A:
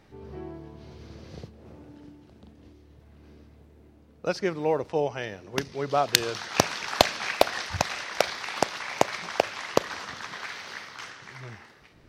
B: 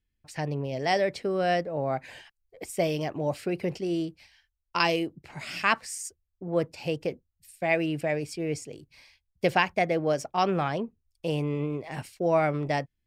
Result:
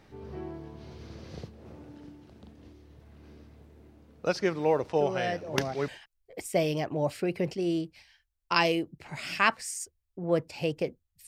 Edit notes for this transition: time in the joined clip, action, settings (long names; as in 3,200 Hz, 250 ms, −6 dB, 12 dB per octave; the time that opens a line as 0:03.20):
A
0:04.97: mix in B from 0:01.21 0.91 s −6.5 dB
0:05.88: continue with B from 0:02.12